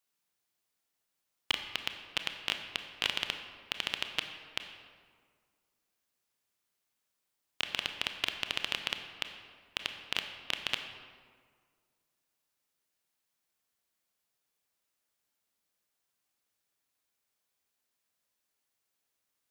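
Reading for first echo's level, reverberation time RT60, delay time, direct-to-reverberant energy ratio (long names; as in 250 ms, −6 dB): no echo audible, 1.9 s, no echo audible, 6.0 dB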